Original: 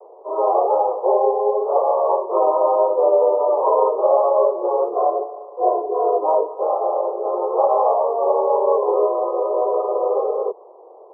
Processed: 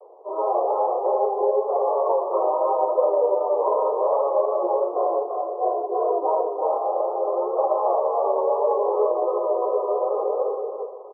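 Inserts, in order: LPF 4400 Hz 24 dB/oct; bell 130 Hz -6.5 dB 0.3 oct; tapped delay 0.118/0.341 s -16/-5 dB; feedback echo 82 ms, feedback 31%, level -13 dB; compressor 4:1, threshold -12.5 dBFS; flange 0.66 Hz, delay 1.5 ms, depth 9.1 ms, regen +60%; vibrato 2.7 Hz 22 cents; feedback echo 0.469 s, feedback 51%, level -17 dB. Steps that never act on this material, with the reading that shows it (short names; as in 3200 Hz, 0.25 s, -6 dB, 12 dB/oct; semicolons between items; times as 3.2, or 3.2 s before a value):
LPF 4400 Hz: input band ends at 1300 Hz; bell 130 Hz: input band starts at 300 Hz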